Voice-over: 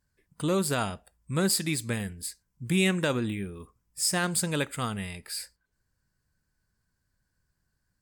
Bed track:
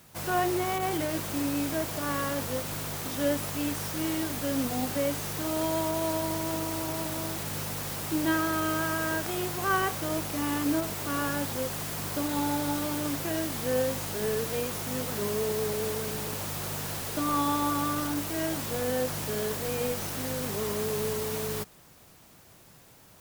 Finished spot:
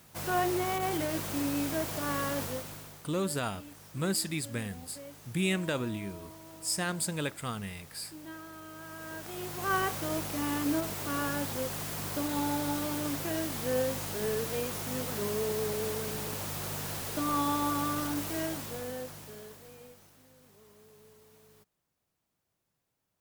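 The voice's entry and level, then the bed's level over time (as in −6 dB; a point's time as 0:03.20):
2.65 s, −5.0 dB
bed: 0:02.43 −2 dB
0:03.09 −18.5 dB
0:08.71 −18.5 dB
0:09.76 −2.5 dB
0:18.36 −2.5 dB
0:20.28 −27.5 dB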